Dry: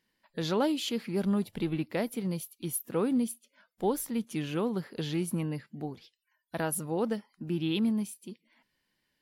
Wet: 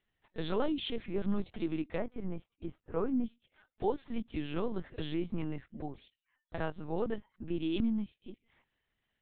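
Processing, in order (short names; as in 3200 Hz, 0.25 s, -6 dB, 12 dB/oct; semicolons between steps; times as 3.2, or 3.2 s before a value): 1.97–3.24 Chebyshev low-pass 1500 Hz, order 2; LPC vocoder at 8 kHz pitch kept; gain -3 dB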